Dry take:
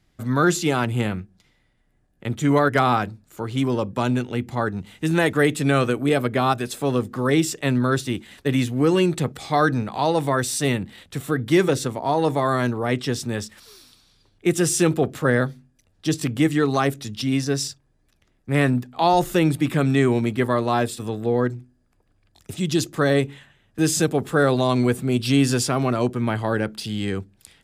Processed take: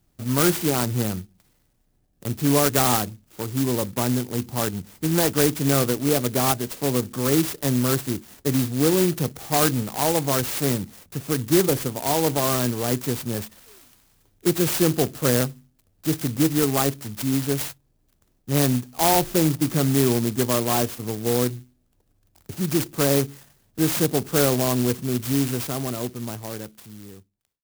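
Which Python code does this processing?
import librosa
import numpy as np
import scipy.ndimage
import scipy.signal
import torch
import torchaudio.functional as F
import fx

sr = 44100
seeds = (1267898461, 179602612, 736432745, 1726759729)

y = fx.fade_out_tail(x, sr, length_s=3.3)
y = fx.clock_jitter(y, sr, seeds[0], jitter_ms=0.14)
y = y * 10.0 ** (-1.0 / 20.0)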